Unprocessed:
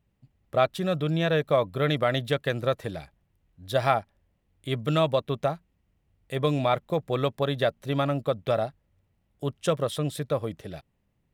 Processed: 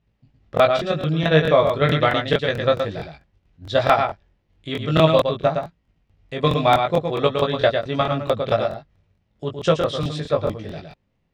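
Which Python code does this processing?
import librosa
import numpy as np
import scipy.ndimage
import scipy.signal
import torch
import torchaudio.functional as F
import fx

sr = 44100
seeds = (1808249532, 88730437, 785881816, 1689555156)

p1 = scipy.signal.sosfilt(scipy.signal.butter(4, 5700.0, 'lowpass', fs=sr, output='sos'), x)
p2 = fx.high_shelf(p1, sr, hz=2300.0, db=2.0)
p3 = fx.level_steps(p2, sr, step_db=23)
p4 = p2 + (p3 * 10.0 ** (2.0 / 20.0))
p5 = fx.doubler(p4, sr, ms=19.0, db=-3.5)
p6 = p5 + 10.0 ** (-6.0 / 20.0) * np.pad(p5, (int(113 * sr / 1000.0), 0))[:len(p5)]
y = fx.buffer_crackle(p6, sr, first_s=0.55, period_s=0.22, block=1024, kind='repeat')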